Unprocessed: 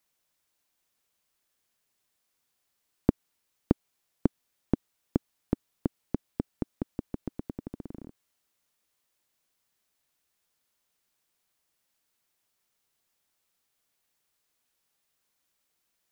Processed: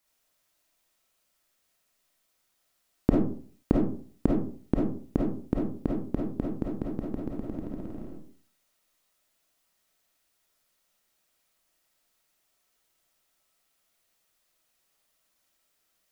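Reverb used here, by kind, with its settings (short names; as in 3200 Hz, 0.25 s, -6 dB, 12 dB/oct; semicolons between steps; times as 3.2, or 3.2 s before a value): digital reverb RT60 0.47 s, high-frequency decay 0.45×, pre-delay 10 ms, DRR -3.5 dB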